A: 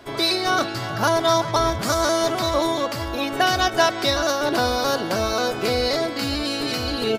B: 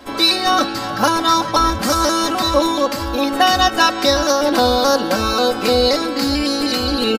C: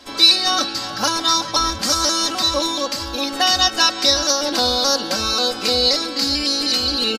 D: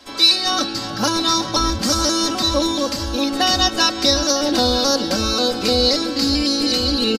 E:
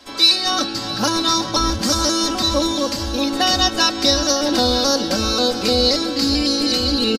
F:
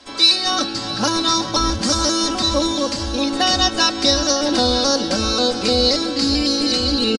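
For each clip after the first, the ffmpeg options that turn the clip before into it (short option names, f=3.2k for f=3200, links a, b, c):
-af "aecho=1:1:3.8:0.81,volume=3.5dB"
-af "equalizer=f=5.2k:t=o:w=1.8:g=13,volume=-7.5dB"
-filter_complex "[0:a]aecho=1:1:952:0.168,acrossover=split=440|5400[a][b][c];[a]dynaudnorm=f=390:g=3:m=9dB[d];[d][b][c]amix=inputs=3:normalize=0,volume=-1.5dB"
-af "aecho=1:1:667:0.15"
-af "aresample=22050,aresample=44100"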